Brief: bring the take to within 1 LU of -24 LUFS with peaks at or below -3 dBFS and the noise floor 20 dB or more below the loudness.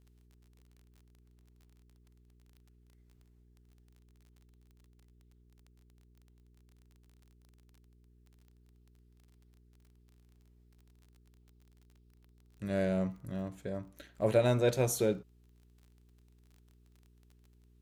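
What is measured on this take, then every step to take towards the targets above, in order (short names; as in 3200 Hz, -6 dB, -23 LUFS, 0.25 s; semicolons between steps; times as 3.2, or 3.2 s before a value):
ticks 29/s; hum 60 Hz; harmonics up to 420 Hz; hum level -61 dBFS; loudness -32.5 LUFS; peak -14.0 dBFS; loudness target -24.0 LUFS
-> de-click; de-hum 60 Hz, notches 7; gain +8.5 dB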